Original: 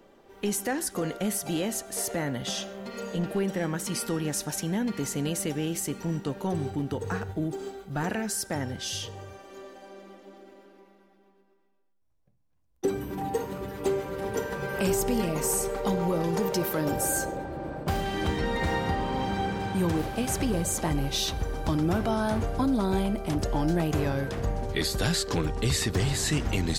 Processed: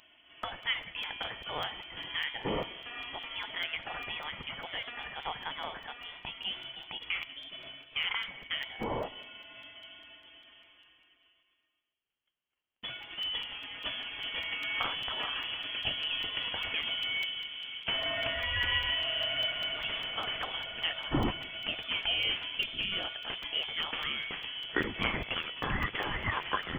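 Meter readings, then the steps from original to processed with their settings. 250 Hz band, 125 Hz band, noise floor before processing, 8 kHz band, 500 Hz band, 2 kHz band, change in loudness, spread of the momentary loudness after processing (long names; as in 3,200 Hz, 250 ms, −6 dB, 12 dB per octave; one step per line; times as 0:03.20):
−15.5 dB, −15.5 dB, −64 dBFS, below −35 dB, −13.0 dB, +2.5 dB, −4.5 dB, 11 LU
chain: high-pass filter 660 Hz 24 dB per octave
high-shelf EQ 2,600 Hz +7.5 dB
on a send: tape delay 196 ms, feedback 66%, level −18.5 dB, low-pass 2,200 Hz
on the sum: voice inversion scrambler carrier 3,800 Hz
regular buffer underruns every 0.20 s, samples 128, zero, from 0:00.43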